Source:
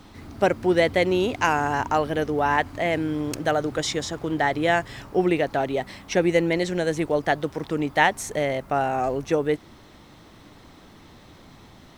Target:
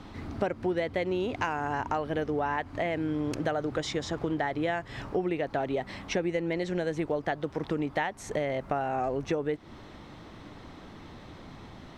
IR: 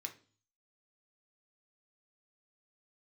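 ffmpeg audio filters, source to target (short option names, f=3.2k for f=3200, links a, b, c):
-af "acompressor=threshold=-29dB:ratio=6,aemphasis=mode=reproduction:type=50fm,volume=2dB"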